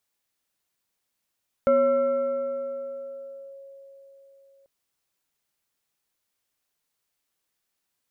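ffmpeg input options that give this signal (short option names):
-f lavfi -i "aevalsrc='0.178*pow(10,-3*t/4.37)*sin(2*PI*549*t+0.53*clip(1-t/1.9,0,1)*sin(2*PI*1.45*549*t))':d=2.99:s=44100"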